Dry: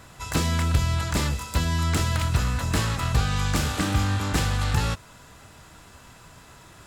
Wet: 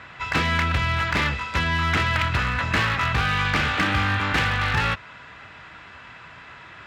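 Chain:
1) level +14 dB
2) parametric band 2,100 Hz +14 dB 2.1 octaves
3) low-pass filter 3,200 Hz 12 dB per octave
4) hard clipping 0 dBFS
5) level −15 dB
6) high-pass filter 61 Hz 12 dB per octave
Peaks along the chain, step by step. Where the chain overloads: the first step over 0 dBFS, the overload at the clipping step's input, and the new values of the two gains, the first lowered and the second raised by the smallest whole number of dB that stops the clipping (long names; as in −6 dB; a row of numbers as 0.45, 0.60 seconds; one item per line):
+5.5, +10.0, +9.0, 0.0, −15.0, −10.0 dBFS
step 1, 9.0 dB
step 1 +5 dB, step 5 −6 dB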